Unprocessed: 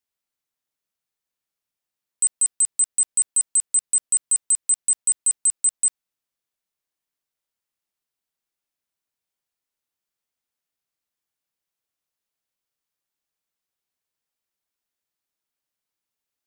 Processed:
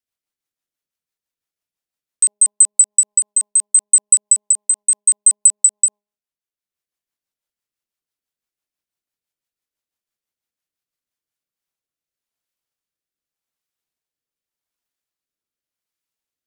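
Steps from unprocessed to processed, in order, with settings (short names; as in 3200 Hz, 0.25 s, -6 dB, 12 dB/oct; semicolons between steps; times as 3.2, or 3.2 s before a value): transient shaper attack +11 dB, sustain -6 dB; de-hum 206.8 Hz, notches 5; rotary speaker horn 6 Hz, later 0.85 Hz, at 10.98; gain +1 dB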